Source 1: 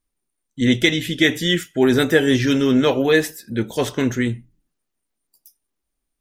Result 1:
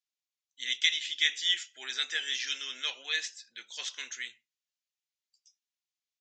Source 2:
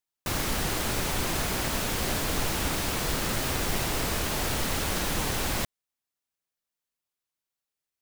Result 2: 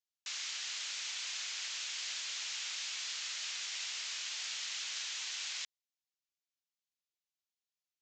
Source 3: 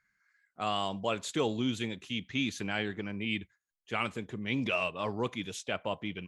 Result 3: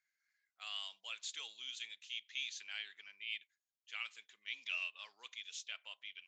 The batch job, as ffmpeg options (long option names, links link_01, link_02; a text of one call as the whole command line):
ffmpeg -i in.wav -af "asuperpass=centerf=5200:order=4:qfactor=0.7,aresample=16000,aresample=44100,volume=-4dB" out.wav